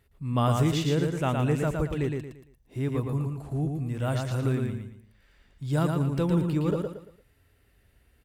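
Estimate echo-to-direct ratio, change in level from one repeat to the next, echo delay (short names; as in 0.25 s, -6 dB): -3.5 dB, -9.5 dB, 0.114 s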